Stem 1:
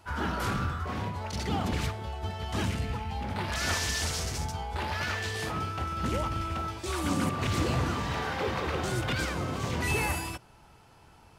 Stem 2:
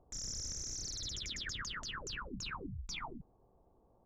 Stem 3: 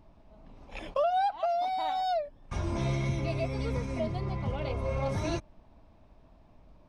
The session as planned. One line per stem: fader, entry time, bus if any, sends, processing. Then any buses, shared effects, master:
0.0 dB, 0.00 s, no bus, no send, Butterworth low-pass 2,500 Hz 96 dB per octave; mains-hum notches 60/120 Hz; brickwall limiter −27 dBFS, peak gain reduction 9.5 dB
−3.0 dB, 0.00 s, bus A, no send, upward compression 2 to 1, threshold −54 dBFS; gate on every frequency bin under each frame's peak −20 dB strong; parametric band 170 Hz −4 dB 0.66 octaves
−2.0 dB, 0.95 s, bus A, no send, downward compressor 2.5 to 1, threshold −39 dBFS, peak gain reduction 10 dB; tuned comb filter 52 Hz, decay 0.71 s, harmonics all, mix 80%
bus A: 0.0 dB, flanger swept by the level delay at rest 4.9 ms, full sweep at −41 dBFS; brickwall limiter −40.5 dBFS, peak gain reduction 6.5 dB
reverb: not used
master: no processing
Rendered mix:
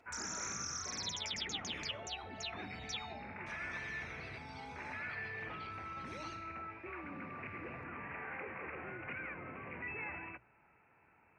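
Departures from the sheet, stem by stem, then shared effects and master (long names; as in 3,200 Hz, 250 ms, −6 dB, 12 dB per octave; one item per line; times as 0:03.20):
stem 1 0.0 dB → −11.0 dB
stem 2: missing gate on every frequency bin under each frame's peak −20 dB strong
master: extra meter weighting curve D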